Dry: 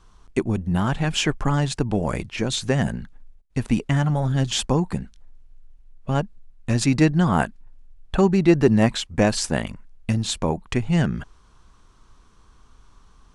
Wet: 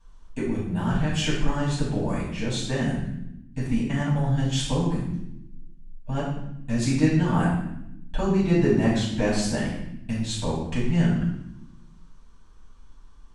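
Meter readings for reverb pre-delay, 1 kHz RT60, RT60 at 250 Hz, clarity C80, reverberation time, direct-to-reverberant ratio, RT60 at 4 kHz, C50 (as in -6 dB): 3 ms, 0.70 s, 1.4 s, 5.5 dB, 0.80 s, -7.5 dB, 0.70 s, 2.0 dB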